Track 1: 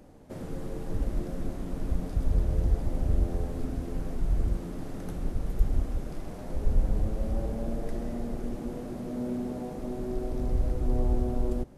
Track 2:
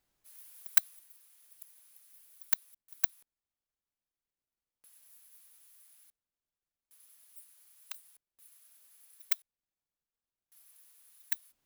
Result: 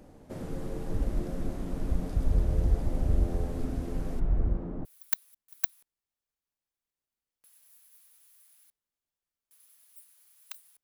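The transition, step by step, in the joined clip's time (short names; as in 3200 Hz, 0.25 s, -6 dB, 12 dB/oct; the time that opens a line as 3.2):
track 1
4.19–4.85 LPF 2100 Hz -> 1000 Hz
4.85 switch to track 2 from 2.25 s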